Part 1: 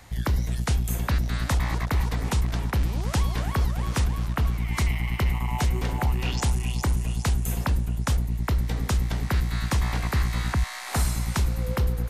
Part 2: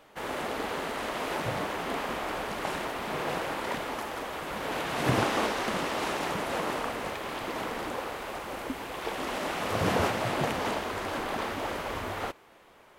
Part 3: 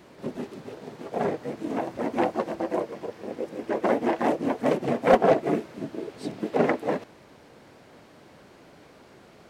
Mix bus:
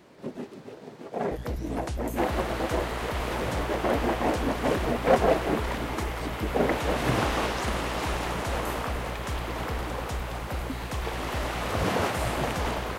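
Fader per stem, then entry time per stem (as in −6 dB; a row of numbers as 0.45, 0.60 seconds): −10.0, 0.0, −3.0 decibels; 1.20, 2.00, 0.00 seconds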